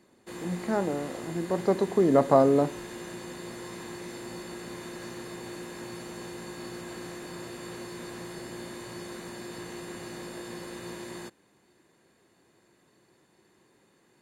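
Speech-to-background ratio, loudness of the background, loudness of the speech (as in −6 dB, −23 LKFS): 15.0 dB, −40.5 LKFS, −25.5 LKFS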